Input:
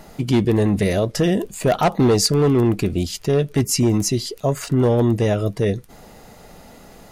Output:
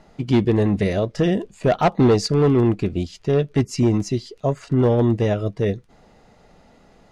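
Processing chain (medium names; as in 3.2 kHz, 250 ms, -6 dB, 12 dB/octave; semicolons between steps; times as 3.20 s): distance through air 90 m; upward expansion 1.5:1, over -31 dBFS; trim +1 dB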